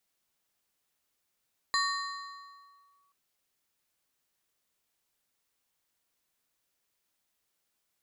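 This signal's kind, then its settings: FM tone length 1.38 s, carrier 1.13 kHz, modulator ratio 2.63, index 1.3, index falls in 1.37 s linear, decay 1.78 s, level -23.5 dB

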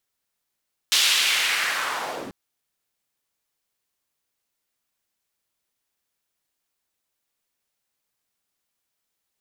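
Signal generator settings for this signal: swept filtered noise white, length 1.39 s bandpass, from 3.6 kHz, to 170 Hz, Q 1.6, linear, gain ramp -7 dB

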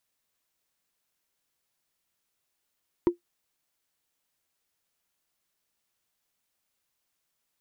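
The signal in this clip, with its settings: wood hit, lowest mode 348 Hz, decay 0.12 s, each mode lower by 12 dB, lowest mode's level -13 dB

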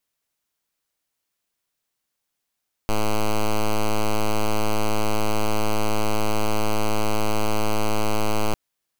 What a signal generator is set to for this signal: pulse 107 Hz, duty 6% -19 dBFS 5.65 s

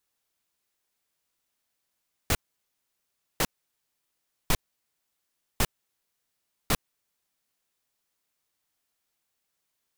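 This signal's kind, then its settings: noise bursts pink, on 0.05 s, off 1.05 s, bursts 5, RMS -22.5 dBFS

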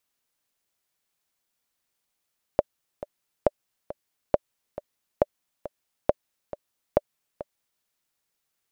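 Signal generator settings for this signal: metronome 137 bpm, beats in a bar 2, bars 6, 589 Hz, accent 15.5 dB -4.5 dBFS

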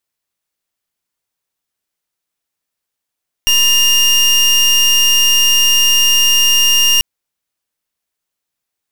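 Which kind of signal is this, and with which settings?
pulse 2.82 kHz, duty 29% -10.5 dBFS 3.54 s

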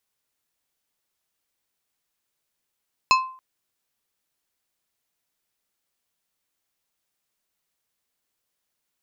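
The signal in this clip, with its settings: glass hit plate, length 0.28 s, lowest mode 1.04 kHz, decay 0.46 s, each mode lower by 3.5 dB, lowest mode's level -12 dB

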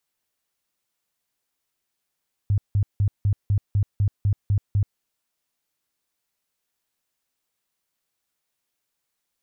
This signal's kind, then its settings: tone bursts 101 Hz, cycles 8, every 0.25 s, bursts 10, -16.5 dBFS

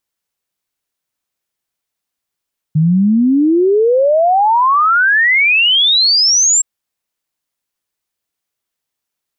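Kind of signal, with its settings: log sweep 150 Hz -> 7.6 kHz 3.87 s -8 dBFS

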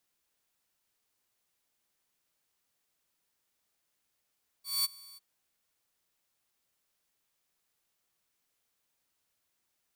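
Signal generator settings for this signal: ADSR saw 4.52 kHz, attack 206 ms, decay 23 ms, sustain -24 dB, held 0.53 s, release 24 ms -23 dBFS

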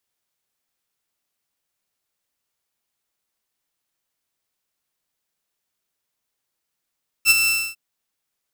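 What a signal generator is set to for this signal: ADSR saw 2.67 kHz, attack 53 ms, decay 27 ms, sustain -7.5 dB, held 0.23 s, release 271 ms -6.5 dBFS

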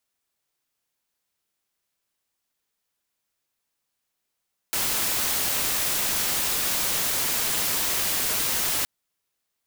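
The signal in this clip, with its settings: noise white, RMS -25 dBFS 4.12 s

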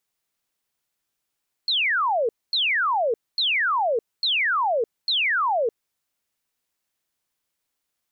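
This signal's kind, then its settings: burst of laser zaps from 4.4 kHz, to 430 Hz, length 0.61 s sine, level -19 dB, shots 5, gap 0.24 s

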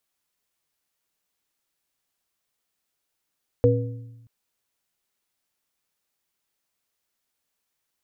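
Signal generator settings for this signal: sine partials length 0.63 s, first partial 116 Hz, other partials 271/484 Hz, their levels -5/4 dB, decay 1.15 s, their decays 0.83/0.54 s, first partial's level -17 dB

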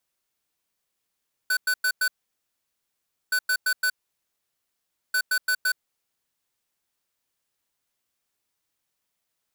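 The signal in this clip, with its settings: beep pattern square 1.5 kHz, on 0.07 s, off 0.10 s, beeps 4, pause 1.24 s, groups 3, -22.5 dBFS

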